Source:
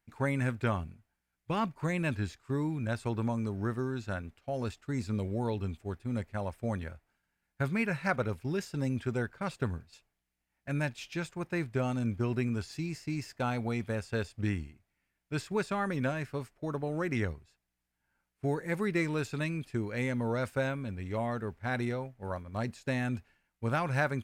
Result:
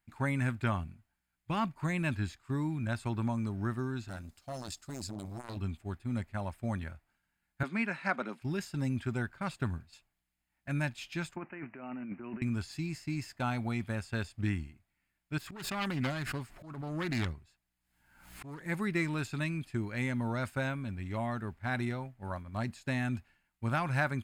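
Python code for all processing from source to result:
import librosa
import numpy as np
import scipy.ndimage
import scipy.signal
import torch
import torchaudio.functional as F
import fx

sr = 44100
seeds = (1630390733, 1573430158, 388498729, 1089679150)

y = fx.chain(x, sr, fx.high_shelf_res(hz=3700.0, db=10.5, q=1.5),
    fx.clip_hard(threshold_db=-30.5),
    fx.transformer_sat(knee_hz=310.0), at=(4.08, 5.57))
y = fx.chain(y, sr, fx.steep_highpass(hz=200.0, slope=36),
    fx.air_absorb(metres=54.0), at=(7.63, 8.42))
y = fx.chain(y, sr, fx.highpass(hz=210.0, slope=24),
    fx.resample_bad(factor=8, down='none', up='filtered'),
    fx.over_compress(threshold_db=-40.0, ratio=-1.0), at=(11.36, 12.42))
y = fx.chain(y, sr, fx.self_delay(depth_ms=0.29),
    fx.auto_swell(attack_ms=323.0),
    fx.pre_swell(db_per_s=62.0), at=(15.38, 18.66))
y = fx.peak_eq(y, sr, hz=470.0, db=-12.0, octaves=0.43)
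y = fx.notch(y, sr, hz=5800.0, q=8.2)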